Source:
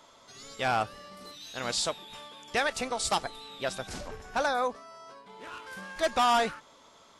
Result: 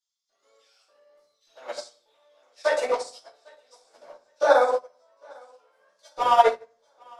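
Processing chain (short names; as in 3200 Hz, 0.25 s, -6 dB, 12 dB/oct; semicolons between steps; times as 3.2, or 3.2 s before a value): bell 890 Hz +8 dB 1.9 oct; LFO high-pass square 1.7 Hz 490–5200 Hz; thinning echo 0.802 s, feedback 52%, high-pass 240 Hz, level -13 dB; level quantiser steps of 11 dB; shoebox room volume 120 m³, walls mixed, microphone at 2.5 m; upward expander 2.5:1, over -29 dBFS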